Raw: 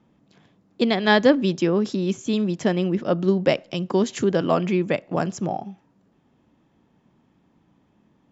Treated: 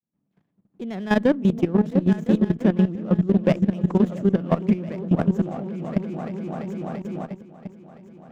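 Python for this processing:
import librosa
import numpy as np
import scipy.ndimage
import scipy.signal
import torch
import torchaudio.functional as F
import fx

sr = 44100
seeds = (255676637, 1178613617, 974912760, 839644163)

p1 = fx.fade_in_head(x, sr, length_s=1.61)
p2 = fx.peak_eq(p1, sr, hz=180.0, db=8.0, octaves=1.1)
p3 = p2 + fx.echo_opening(p2, sr, ms=339, hz=200, octaves=2, feedback_pct=70, wet_db=-3, dry=0)
p4 = fx.rider(p3, sr, range_db=5, speed_s=0.5)
p5 = fx.peak_eq(p4, sr, hz=4700.0, db=-14.5, octaves=0.82)
p6 = fx.level_steps(p5, sr, step_db=15)
y = fx.running_max(p6, sr, window=5)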